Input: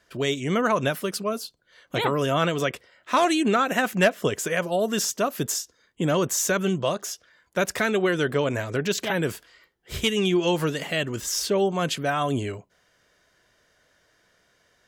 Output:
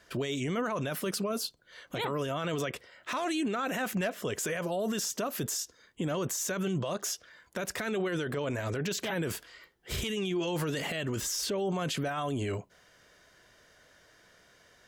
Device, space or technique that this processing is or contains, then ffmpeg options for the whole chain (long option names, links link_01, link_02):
stacked limiters: -af "alimiter=limit=-17.5dB:level=0:latency=1:release=456,alimiter=limit=-22.5dB:level=0:latency=1:release=49,alimiter=level_in=4dB:limit=-24dB:level=0:latency=1:release=13,volume=-4dB,volume=3.5dB"